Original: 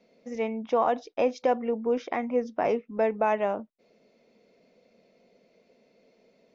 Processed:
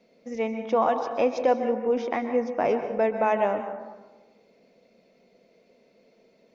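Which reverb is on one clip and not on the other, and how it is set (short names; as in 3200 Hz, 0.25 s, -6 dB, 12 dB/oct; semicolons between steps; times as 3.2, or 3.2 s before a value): plate-style reverb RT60 1.2 s, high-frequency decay 0.45×, pre-delay 0.115 s, DRR 7.5 dB; gain +1.5 dB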